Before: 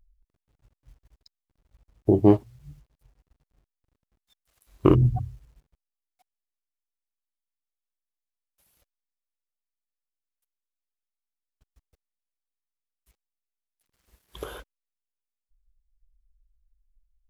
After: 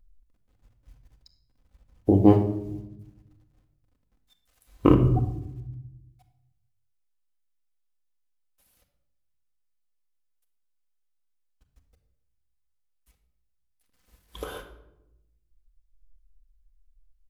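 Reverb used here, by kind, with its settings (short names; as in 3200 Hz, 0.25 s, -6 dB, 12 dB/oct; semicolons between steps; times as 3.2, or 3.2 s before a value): shoebox room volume 2900 m³, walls furnished, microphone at 2 m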